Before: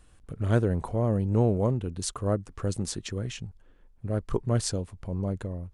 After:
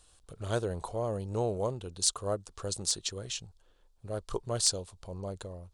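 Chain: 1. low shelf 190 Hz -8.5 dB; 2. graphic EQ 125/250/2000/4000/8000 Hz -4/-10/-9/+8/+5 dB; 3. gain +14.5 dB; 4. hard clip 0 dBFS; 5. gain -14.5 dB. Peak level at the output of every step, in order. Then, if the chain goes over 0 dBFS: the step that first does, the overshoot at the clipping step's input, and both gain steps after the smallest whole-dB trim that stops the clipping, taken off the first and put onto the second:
-12.5, -6.5, +8.0, 0.0, -14.5 dBFS; step 3, 8.0 dB; step 3 +6.5 dB, step 5 -6.5 dB

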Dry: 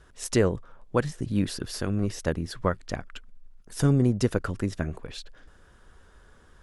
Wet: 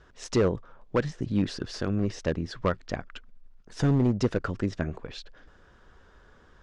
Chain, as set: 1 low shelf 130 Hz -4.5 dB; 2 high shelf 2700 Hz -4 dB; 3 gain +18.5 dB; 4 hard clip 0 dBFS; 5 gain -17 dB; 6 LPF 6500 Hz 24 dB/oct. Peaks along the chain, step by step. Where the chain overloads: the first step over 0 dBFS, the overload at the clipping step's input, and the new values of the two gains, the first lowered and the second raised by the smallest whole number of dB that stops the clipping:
-9.0, -9.5, +9.0, 0.0, -17.0, -16.5 dBFS; step 3, 9.0 dB; step 3 +9.5 dB, step 5 -8 dB

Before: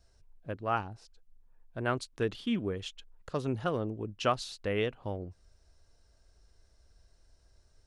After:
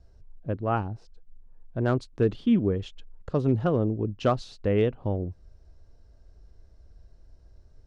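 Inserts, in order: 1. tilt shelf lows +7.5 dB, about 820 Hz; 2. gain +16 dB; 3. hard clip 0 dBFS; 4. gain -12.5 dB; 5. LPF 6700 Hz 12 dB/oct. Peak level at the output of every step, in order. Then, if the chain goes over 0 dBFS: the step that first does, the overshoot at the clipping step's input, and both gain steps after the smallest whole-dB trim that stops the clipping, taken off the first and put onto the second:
-12.0, +4.0, 0.0, -12.5, -12.5 dBFS; step 2, 4.0 dB; step 2 +12 dB, step 4 -8.5 dB

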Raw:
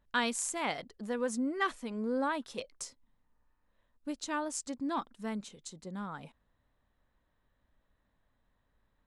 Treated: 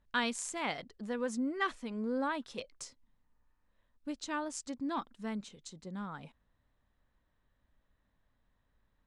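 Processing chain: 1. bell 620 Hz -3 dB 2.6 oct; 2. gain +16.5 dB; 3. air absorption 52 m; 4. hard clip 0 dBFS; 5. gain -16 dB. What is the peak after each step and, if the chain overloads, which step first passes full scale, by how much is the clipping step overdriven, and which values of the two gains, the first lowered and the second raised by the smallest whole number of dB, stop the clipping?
-19.0, -2.5, -3.0, -3.0, -19.0 dBFS; no overload

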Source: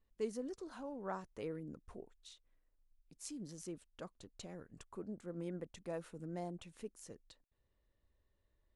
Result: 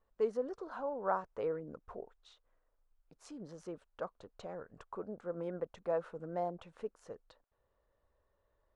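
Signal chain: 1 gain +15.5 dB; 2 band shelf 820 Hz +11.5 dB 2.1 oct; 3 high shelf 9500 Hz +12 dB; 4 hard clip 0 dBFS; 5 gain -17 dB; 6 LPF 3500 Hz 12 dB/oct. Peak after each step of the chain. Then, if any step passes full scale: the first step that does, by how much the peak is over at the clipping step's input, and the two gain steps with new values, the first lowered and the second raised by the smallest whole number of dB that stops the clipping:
-11.5, -2.5, -2.5, -2.5, -19.5, -19.5 dBFS; no overload

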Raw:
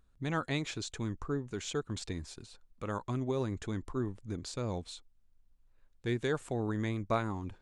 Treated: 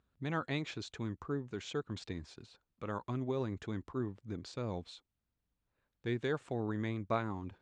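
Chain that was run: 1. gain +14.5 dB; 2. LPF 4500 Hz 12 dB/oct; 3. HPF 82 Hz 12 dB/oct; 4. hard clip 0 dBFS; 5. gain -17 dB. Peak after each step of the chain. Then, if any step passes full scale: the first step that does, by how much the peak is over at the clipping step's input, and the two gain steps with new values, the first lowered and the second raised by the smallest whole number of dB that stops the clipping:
-2.5, -2.5, -1.5, -1.5, -18.5 dBFS; no overload

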